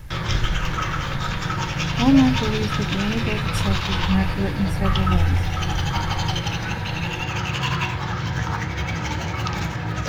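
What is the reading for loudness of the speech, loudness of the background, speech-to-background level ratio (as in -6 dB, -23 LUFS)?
-24.0 LUFS, -25.0 LUFS, 1.0 dB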